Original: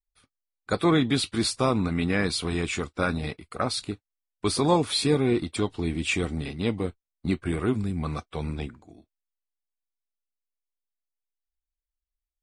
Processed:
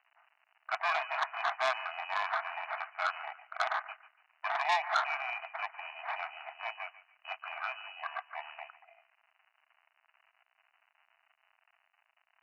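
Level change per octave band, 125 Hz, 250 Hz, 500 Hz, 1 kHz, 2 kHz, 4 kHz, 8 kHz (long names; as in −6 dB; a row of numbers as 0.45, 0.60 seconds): below −40 dB, below −40 dB, −14.0 dB, −0.5 dB, −1.0 dB, −12.0 dB, −22.0 dB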